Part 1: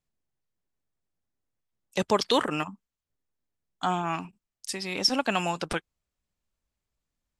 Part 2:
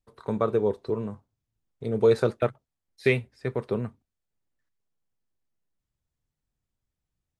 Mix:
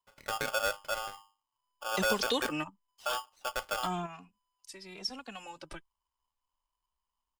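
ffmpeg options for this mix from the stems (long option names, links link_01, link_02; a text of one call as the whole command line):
ffmpeg -i stem1.wav -i stem2.wav -filter_complex "[0:a]acrossover=split=190|3000[link_01][link_02][link_03];[link_02]acompressor=threshold=-26dB:ratio=6[link_04];[link_01][link_04][link_03]amix=inputs=3:normalize=0,asplit=2[link_05][link_06];[link_06]adelay=2.5,afreqshift=1[link_07];[link_05][link_07]amix=inputs=2:normalize=1,volume=-1.5dB[link_08];[1:a]bandreject=frequency=50:width_type=h:width=6,bandreject=frequency=100:width_type=h:width=6,bandreject=frequency=150:width_type=h:width=6,bandreject=frequency=200:width_type=h:width=6,alimiter=limit=-15.5dB:level=0:latency=1:release=47,aeval=exprs='val(0)*sgn(sin(2*PI*1000*n/s))':channel_layout=same,volume=-6.5dB,asplit=2[link_09][link_10];[link_10]apad=whole_len=326323[link_11];[link_08][link_11]sidechaingate=range=-10dB:threshold=-60dB:ratio=16:detection=peak[link_12];[link_12][link_09]amix=inputs=2:normalize=0,asubboost=boost=3.5:cutoff=62" out.wav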